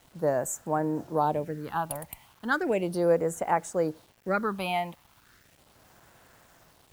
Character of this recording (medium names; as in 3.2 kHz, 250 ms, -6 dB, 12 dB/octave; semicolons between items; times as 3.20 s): phasing stages 6, 0.36 Hz, lowest notch 410–4500 Hz; a quantiser's noise floor 10-bit, dither none